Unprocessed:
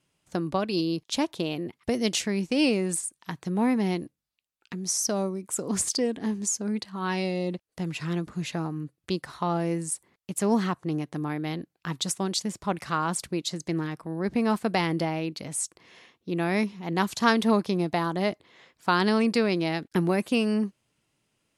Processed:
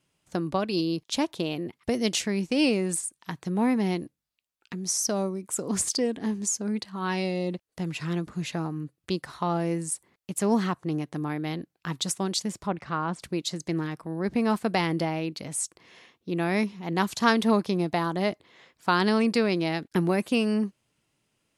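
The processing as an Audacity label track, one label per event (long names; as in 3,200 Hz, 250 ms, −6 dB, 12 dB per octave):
12.670000	13.220000	head-to-tape spacing loss at 10 kHz 22 dB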